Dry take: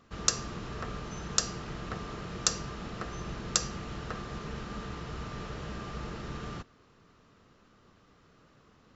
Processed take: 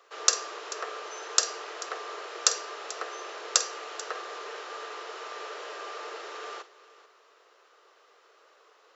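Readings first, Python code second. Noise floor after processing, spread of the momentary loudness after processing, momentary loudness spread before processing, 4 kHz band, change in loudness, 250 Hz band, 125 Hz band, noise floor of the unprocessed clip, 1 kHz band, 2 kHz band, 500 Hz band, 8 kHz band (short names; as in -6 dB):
-61 dBFS, 13 LU, 10 LU, +4.5 dB, +4.0 dB, -14.0 dB, under -40 dB, -62 dBFS, +4.5 dB, +5.0 dB, +3.5 dB, n/a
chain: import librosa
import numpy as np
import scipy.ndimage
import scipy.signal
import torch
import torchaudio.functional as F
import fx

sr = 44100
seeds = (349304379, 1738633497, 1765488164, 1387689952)

p1 = scipy.signal.sosfilt(scipy.signal.butter(8, 400.0, 'highpass', fs=sr, output='sos'), x)
p2 = p1 + fx.echo_multitap(p1, sr, ms=(48, 438), db=(-14.5, -17.5), dry=0)
y = F.gain(torch.from_numpy(p2), 4.5).numpy()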